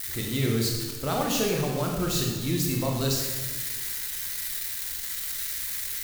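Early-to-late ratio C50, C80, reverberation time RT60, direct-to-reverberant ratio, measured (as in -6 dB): 2.5 dB, 4.5 dB, 1.3 s, -0.5 dB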